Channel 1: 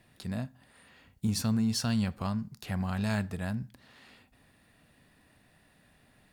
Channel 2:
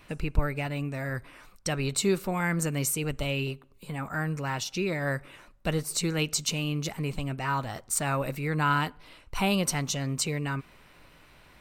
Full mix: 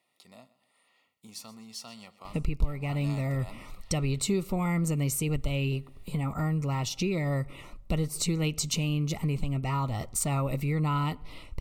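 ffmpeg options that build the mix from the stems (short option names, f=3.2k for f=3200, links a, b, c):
-filter_complex "[0:a]highpass=620,volume=-1dB,afade=t=in:st=2.3:d=0.4:silence=0.446684,asplit=2[a][b];[b]volume=-18dB[c];[1:a]adelay=2250,volume=2.5dB[d];[c]aecho=0:1:126|252|378|504:1|0.31|0.0961|0.0298[e];[a][d][e]amix=inputs=3:normalize=0,asuperstop=centerf=1600:order=8:qfactor=3.6,lowshelf=f=200:g=11.5,acompressor=threshold=-28dB:ratio=2.5"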